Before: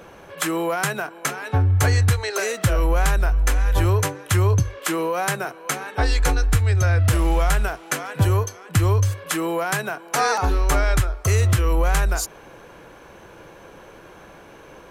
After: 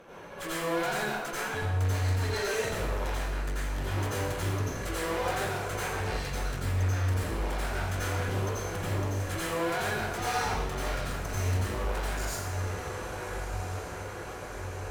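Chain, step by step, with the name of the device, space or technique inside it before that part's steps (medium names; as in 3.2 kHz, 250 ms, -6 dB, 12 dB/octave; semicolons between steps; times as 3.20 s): echo that smears into a reverb 1294 ms, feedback 62%, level -14.5 dB; tube preamp driven hard (valve stage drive 31 dB, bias 0.7; bass shelf 120 Hz -5 dB; treble shelf 5.5 kHz -5 dB); plate-style reverb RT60 0.82 s, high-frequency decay 0.95×, pre-delay 75 ms, DRR -8 dB; trim -5 dB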